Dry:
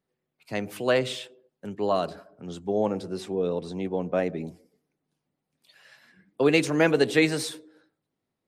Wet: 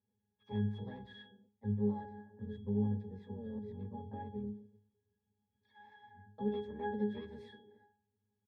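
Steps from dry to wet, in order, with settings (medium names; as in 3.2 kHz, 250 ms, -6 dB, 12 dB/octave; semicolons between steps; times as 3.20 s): harmony voices -12 st 0 dB, +4 st -3 dB; compression 3:1, threshold -37 dBFS, peak gain reduction 19 dB; pitch-class resonator G#, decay 0.38 s; trim +9 dB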